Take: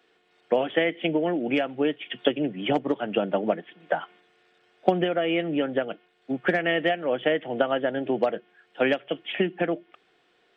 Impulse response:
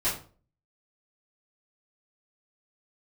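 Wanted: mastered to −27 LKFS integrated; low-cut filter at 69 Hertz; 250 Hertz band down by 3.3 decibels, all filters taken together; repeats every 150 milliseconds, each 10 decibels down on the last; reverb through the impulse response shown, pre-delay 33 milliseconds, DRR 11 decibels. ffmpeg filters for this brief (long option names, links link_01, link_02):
-filter_complex "[0:a]highpass=69,equalizer=frequency=250:width_type=o:gain=-4.5,aecho=1:1:150|300|450|600:0.316|0.101|0.0324|0.0104,asplit=2[link_01][link_02];[1:a]atrim=start_sample=2205,adelay=33[link_03];[link_02][link_03]afir=irnorm=-1:irlink=0,volume=-20.5dB[link_04];[link_01][link_04]amix=inputs=2:normalize=0,volume=-0.5dB"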